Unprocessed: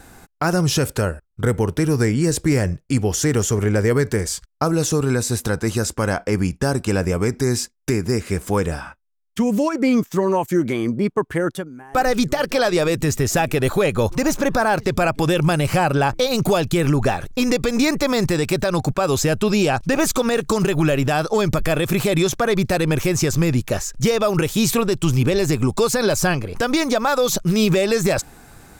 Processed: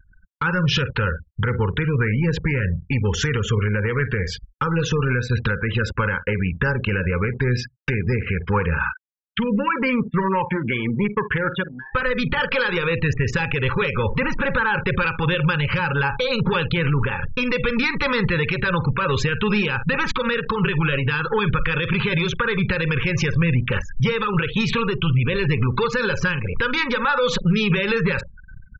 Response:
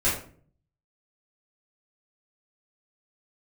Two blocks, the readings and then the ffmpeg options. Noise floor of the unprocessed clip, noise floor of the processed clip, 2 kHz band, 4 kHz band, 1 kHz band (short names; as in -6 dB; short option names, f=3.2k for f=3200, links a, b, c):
-54 dBFS, -48 dBFS, +4.5 dB, -0.5 dB, -1.5 dB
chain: -filter_complex "[0:a]lowpass=f=2.8k:t=q:w=1.8,asplit=2[a][b];[b]adelay=72,lowpass=f=1.5k:p=1,volume=-17dB,asplit=2[c][d];[d]adelay=72,lowpass=f=1.5k:p=1,volume=0.31,asplit=2[e][f];[f]adelay=72,lowpass=f=1.5k:p=1,volume=0.31[g];[c][e][g]amix=inputs=3:normalize=0[h];[a][h]amix=inputs=2:normalize=0,acompressor=threshold=-23dB:ratio=2,asoftclip=type=tanh:threshold=-17dB,asuperstop=centerf=680:order=12:qfactor=2.5,equalizer=f=310:t=o:w=0.72:g=-13.5,asplit=2[i][j];[j]adelay=48,volume=-12dB[k];[i][k]amix=inputs=2:normalize=0,afftfilt=real='re*gte(hypot(re,im),0.0158)':imag='im*gte(hypot(re,im),0.0158)':win_size=1024:overlap=0.75,equalizer=f=1.5k:t=o:w=0.36:g=4.5,anlmdn=1,dynaudnorm=f=170:g=5:m=11dB,alimiter=limit=-9.5dB:level=0:latency=1:release=193,volume=-1.5dB"